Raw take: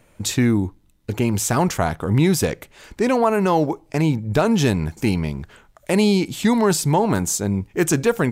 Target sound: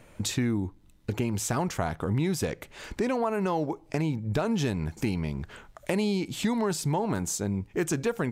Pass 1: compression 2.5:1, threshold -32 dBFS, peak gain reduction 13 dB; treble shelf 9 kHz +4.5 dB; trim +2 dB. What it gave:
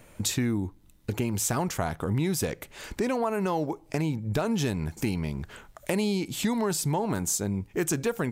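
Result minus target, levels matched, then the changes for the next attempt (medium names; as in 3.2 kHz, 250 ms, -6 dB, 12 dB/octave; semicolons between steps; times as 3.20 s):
8 kHz band +3.5 dB
change: treble shelf 9 kHz -6 dB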